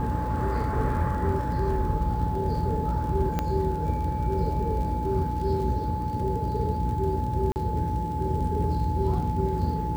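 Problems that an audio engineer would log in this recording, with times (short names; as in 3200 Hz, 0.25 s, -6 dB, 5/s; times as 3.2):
crackle 44/s -35 dBFS
hum 60 Hz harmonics 8 -31 dBFS
tone 860 Hz -31 dBFS
3.39 pop -13 dBFS
7.52–7.56 gap 39 ms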